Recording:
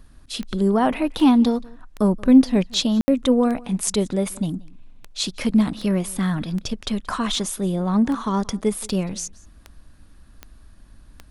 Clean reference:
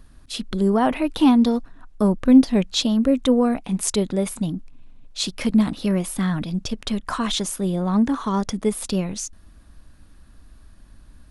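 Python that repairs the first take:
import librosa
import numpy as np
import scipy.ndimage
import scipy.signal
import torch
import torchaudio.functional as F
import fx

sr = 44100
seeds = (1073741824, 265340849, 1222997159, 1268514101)

y = fx.fix_declick_ar(x, sr, threshold=10.0)
y = fx.fix_ambience(y, sr, seeds[0], print_start_s=9.81, print_end_s=10.31, start_s=3.01, end_s=3.08)
y = fx.fix_echo_inverse(y, sr, delay_ms=178, level_db=-23.5)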